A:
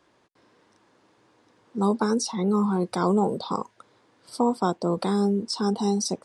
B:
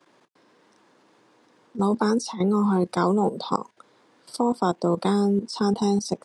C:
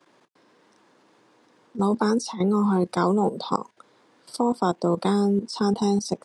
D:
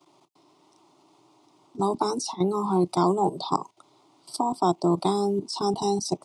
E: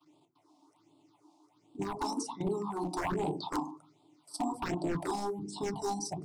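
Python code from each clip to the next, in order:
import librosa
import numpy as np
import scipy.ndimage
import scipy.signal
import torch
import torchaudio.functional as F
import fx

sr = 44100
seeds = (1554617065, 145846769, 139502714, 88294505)

y1 = scipy.signal.sosfilt(scipy.signal.butter(4, 140.0, 'highpass', fs=sr, output='sos'), x)
y1 = fx.level_steps(y1, sr, step_db=13)
y1 = F.gain(torch.from_numpy(y1), 5.5).numpy()
y2 = y1
y3 = fx.fixed_phaser(y2, sr, hz=330.0, stages=8)
y3 = F.gain(torch.from_numpy(y3), 2.5).numpy()
y4 = fx.rev_fdn(y3, sr, rt60_s=0.41, lf_ratio=1.55, hf_ratio=0.3, size_ms=20.0, drr_db=3.0)
y4 = 10.0 ** (-17.5 / 20.0) * (np.abs((y4 / 10.0 ** (-17.5 / 20.0) + 3.0) % 4.0 - 2.0) - 1.0)
y4 = fx.phaser_stages(y4, sr, stages=6, low_hz=110.0, high_hz=1700.0, hz=1.3, feedback_pct=25)
y4 = F.gain(torch.from_numpy(y4), -7.0).numpy()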